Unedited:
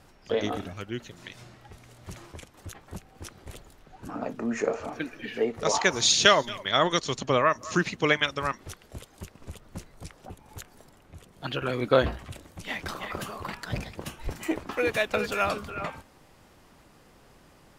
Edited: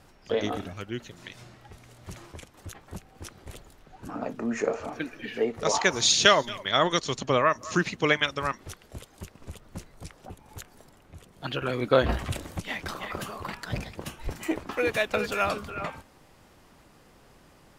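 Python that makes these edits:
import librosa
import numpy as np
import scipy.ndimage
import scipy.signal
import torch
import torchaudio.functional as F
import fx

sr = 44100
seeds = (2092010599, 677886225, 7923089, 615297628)

y = fx.edit(x, sr, fx.clip_gain(start_s=12.09, length_s=0.51, db=9.5), tone=tone)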